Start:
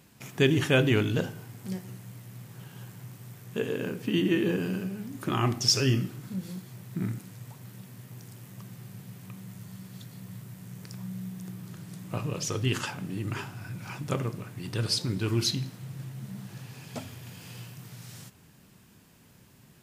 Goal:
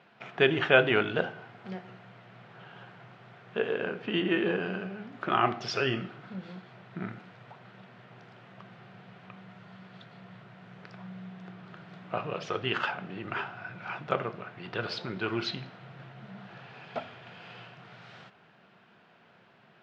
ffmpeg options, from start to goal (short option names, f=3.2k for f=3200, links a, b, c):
-af "highpass=260,equalizer=f=280:t=q:w=4:g=-10,equalizer=f=700:t=q:w=4:g=8,equalizer=f=1.4k:t=q:w=4:g=7,lowpass=f=3.4k:w=0.5412,lowpass=f=3.4k:w=1.3066,volume=2dB"